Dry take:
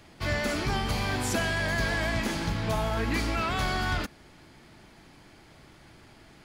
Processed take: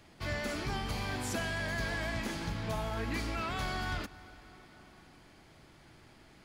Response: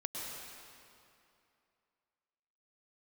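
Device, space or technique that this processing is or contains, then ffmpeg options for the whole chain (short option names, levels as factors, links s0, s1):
ducked reverb: -filter_complex "[0:a]asplit=3[s0][s1][s2];[1:a]atrim=start_sample=2205[s3];[s1][s3]afir=irnorm=-1:irlink=0[s4];[s2]apad=whole_len=284190[s5];[s4][s5]sidechaincompress=threshold=0.02:ratio=8:attack=6:release=940,volume=0.501[s6];[s0][s6]amix=inputs=2:normalize=0,volume=0.398"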